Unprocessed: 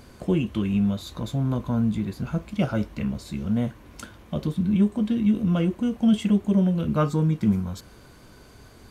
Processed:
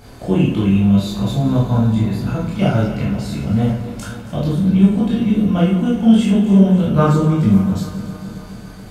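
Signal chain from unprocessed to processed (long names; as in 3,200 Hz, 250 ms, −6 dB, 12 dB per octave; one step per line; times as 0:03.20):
feedback delay that plays each chunk backwards 138 ms, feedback 80%, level −14 dB
convolution reverb RT60 0.60 s, pre-delay 13 ms, DRR −6 dB
level +2 dB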